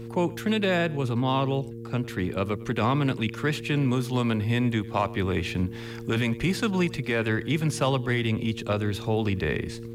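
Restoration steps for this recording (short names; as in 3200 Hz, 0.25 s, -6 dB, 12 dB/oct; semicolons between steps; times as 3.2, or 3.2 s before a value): de-hum 115.7 Hz, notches 4; inverse comb 0.103 s -21.5 dB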